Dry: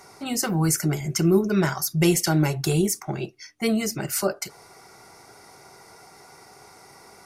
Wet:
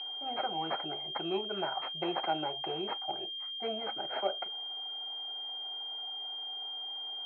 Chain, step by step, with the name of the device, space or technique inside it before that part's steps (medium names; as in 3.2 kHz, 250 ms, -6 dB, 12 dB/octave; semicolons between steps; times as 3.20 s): toy sound module (decimation joined by straight lines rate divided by 6×; class-D stage that switches slowly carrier 3.2 kHz; cabinet simulation 720–3800 Hz, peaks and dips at 760 Hz +7 dB, 1.1 kHz -9 dB, 1.8 kHz -7 dB, 3.5 kHz -7 dB); trim -2.5 dB